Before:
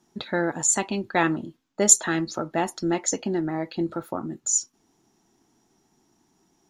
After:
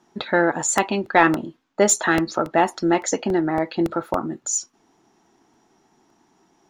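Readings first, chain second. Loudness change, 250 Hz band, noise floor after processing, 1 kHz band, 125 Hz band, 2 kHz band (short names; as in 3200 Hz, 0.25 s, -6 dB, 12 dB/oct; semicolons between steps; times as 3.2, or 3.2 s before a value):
+3.0 dB, +4.5 dB, -64 dBFS, +8.5 dB, +2.0 dB, +7.5 dB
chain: overdrive pedal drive 11 dB, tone 1600 Hz, clips at -1 dBFS; crackling interface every 0.28 s, samples 64, repeat, from 0.78; gain +5 dB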